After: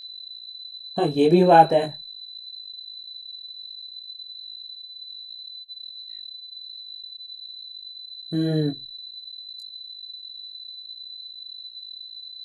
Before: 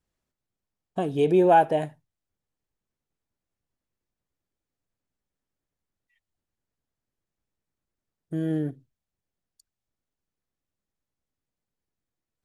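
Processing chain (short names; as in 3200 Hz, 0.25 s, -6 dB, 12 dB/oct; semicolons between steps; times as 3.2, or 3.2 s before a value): spectral noise reduction 18 dB; whine 4000 Hz -41 dBFS; chorus voices 4, 0.64 Hz, delay 21 ms, depth 3.6 ms; gain +7.5 dB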